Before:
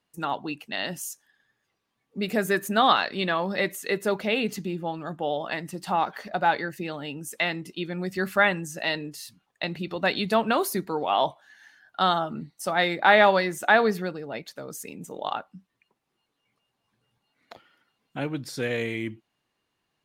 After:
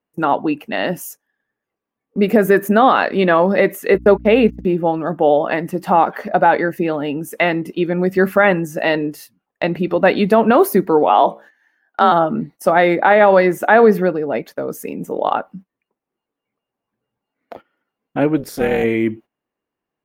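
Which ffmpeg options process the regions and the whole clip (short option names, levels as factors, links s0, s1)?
-filter_complex "[0:a]asettb=1/sr,asplit=3[s0][s1][s2];[s0]atrim=end=3.944[s3];[s1]atrim=start=3.94:end=4.65,asetpts=PTS-STARTPTS,afade=t=in:d=0.004:c=qsin,afade=t=out:st=0.706:d=0.004:c=qsin,agate=range=0.00794:threshold=0.0282:ratio=16:release=100:detection=peak,aeval=exprs='val(0)+0.00562*(sin(2*PI*60*n/s)+sin(2*PI*2*60*n/s)/2+sin(2*PI*3*60*n/s)/3+sin(2*PI*4*60*n/s)/4+sin(2*PI*5*60*n/s)/5)':c=same[s4];[s2]atrim=start=4.646[s5];[s3][s4]acrossfade=d=0.004:c1=hsin:c2=qsin[s6];[s6][s5]acrossfade=d=0.004:c1=qsin:c2=hsin,asettb=1/sr,asplit=3[s7][s8][s9];[s7]atrim=end=11.094[s10];[s8]atrim=start=11.09:end=12.12,asetpts=PTS-STARTPTS,afade=t=in:d=0.004:c=qsin,afade=t=out:st=1.026:d=0.004:c=qsin,highpass=f=140:w=0.5412,highpass=f=140:w=1.3066,bandreject=f=60:t=h:w=6,bandreject=f=120:t=h:w=6,bandreject=f=180:t=h:w=6,bandreject=f=240:t=h:w=6,bandreject=f=300:t=h:w=6,bandreject=f=360:t=h:w=6,bandreject=f=420:t=h:w=6,bandreject=f=480:t=h:w=6,bandreject=f=540:t=h:w=6,afreqshift=34[s11];[s9]atrim=start=12.116[s12];[s10][s11]acrossfade=d=0.004:c1=hsin:c2=qsin[s13];[s13][s12]acrossfade=d=0.004:c1=qsin:c2=hsin,asettb=1/sr,asplit=3[s14][s15][s16];[s14]atrim=end=18.374[s17];[s15]atrim=start=18.37:end=18.84,asetpts=PTS-STARTPTS,afade=t=in:d=0.004:c=qsin,afade=t=out:st=0.466:d=0.004:c=qsin,highshelf=f=4400:g=10.5,tremolo=f=280:d=0.889[s18];[s16]atrim=start=18.836[s19];[s17][s18]acrossfade=d=0.004:c1=hsin:c2=qsin[s20];[s20][s19]acrossfade=d=0.004:c1=qsin:c2=hsin,equalizer=f=125:t=o:w=1:g=-4,equalizer=f=250:t=o:w=1:g=4,equalizer=f=500:t=o:w=1:g=5,equalizer=f=4000:t=o:w=1:g=-11,equalizer=f=8000:t=o:w=1:g=-10,agate=range=0.158:threshold=0.00447:ratio=16:detection=peak,alimiter=level_in=3.98:limit=0.891:release=50:level=0:latency=1,volume=0.891"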